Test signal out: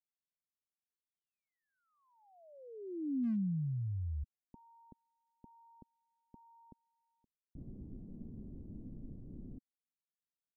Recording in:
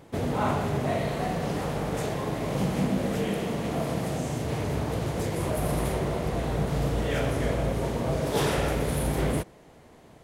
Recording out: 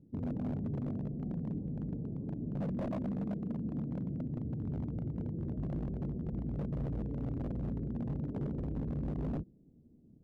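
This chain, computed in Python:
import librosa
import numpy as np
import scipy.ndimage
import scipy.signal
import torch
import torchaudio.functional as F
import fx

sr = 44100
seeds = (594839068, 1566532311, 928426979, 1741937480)

y = fx.ladder_lowpass(x, sr, hz=300.0, resonance_pct=40)
y = 10.0 ** (-30.0 / 20.0) * (np.abs((y / 10.0 ** (-30.0 / 20.0) + 3.0) % 4.0 - 2.0) - 1.0)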